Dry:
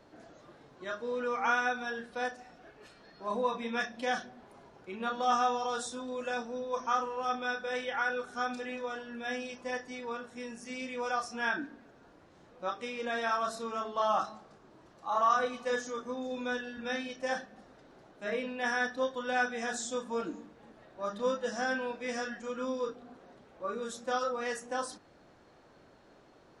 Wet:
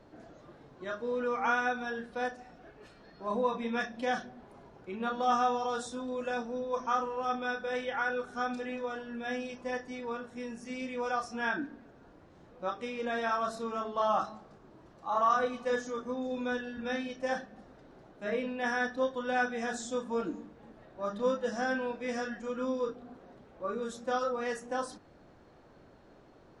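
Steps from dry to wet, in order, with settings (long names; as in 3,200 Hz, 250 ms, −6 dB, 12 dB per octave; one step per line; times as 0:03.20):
spectral tilt −1.5 dB per octave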